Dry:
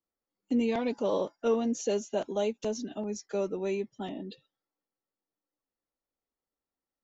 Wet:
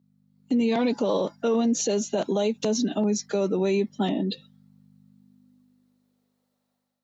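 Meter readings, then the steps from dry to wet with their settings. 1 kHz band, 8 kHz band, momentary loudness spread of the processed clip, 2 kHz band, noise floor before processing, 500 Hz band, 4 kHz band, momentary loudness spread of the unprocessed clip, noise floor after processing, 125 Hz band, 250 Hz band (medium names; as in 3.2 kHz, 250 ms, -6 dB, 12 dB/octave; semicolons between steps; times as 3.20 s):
+5.5 dB, no reading, 4 LU, +6.0 dB, under -85 dBFS, +5.0 dB, +10.0 dB, 9 LU, -77 dBFS, +11.0 dB, +8.0 dB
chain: peaking EQ 4 kHz +7 dB 0.26 oct; hum 50 Hz, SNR 28 dB; high-pass sweep 170 Hz -> 570 Hz, 5.02–6.58 s; bass shelf 190 Hz -7 dB; level rider gain up to 9 dB; peak limiter -18 dBFS, peak gain reduction 10 dB; trim +2 dB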